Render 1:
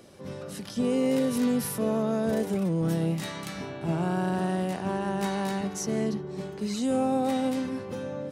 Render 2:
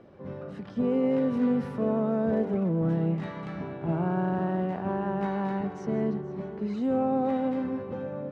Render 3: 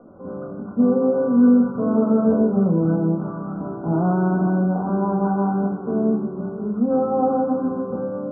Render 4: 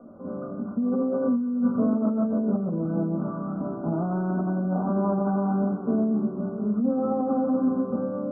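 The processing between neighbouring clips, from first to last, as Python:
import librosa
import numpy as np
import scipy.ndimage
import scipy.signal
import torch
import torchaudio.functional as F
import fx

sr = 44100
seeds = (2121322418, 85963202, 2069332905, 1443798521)

y1 = scipy.signal.sosfilt(scipy.signal.butter(2, 1600.0, 'lowpass', fs=sr, output='sos'), x)
y1 = fx.echo_heads(y1, sr, ms=159, heads='first and third', feedback_pct=47, wet_db=-19.0)
y2 = scipy.signal.sosfilt(scipy.signal.cheby1(10, 1.0, 1500.0, 'lowpass', fs=sr, output='sos'), y1)
y2 = fx.low_shelf(y2, sr, hz=140.0, db=-7.0)
y2 = fx.room_shoebox(y2, sr, seeds[0], volume_m3=260.0, walls='furnished', distance_m=1.9)
y2 = y2 * 10.0 ** (5.0 / 20.0)
y3 = fx.over_compress(y2, sr, threshold_db=-21.0, ratio=-1.0)
y3 = fx.small_body(y3, sr, hz=(240.0, 610.0, 1200.0), ring_ms=45, db=9)
y3 = y3 * 10.0 ** (-7.5 / 20.0)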